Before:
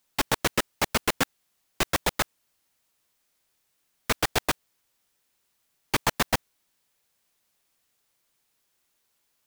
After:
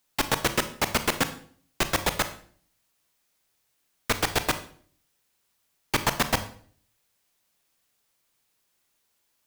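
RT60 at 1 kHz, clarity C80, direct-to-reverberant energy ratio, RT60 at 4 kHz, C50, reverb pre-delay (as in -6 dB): 0.50 s, 16.5 dB, 9.5 dB, 0.45 s, 13.0 dB, 28 ms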